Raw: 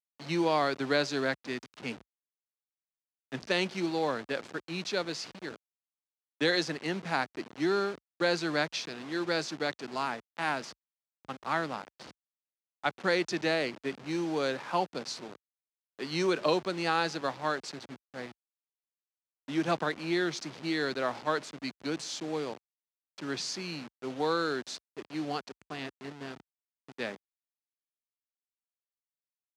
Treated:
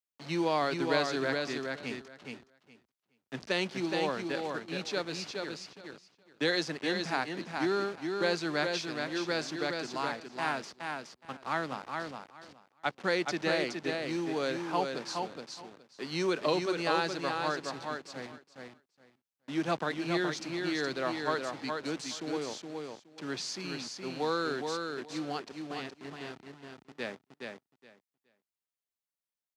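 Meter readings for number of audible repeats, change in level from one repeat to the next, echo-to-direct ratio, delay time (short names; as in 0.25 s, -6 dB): 2, -15.5 dB, -4.5 dB, 0.419 s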